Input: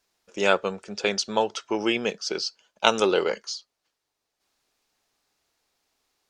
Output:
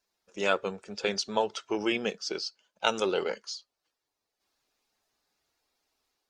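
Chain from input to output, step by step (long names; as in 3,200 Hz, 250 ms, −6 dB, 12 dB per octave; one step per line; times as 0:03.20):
spectral magnitudes quantised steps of 15 dB
automatic gain control gain up to 3 dB
level −6.5 dB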